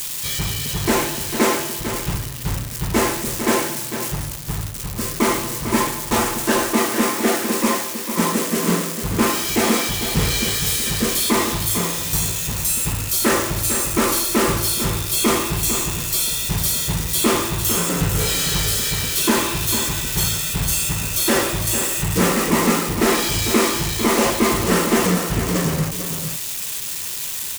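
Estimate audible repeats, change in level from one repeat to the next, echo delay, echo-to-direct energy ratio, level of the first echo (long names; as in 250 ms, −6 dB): 1, repeats not evenly spaced, 450 ms, −9.0 dB, −9.0 dB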